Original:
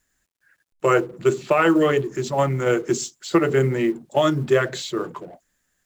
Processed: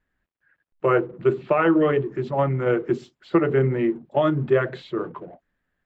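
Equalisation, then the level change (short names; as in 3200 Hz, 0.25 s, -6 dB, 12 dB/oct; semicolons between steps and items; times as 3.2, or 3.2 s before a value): air absorption 460 m; 0.0 dB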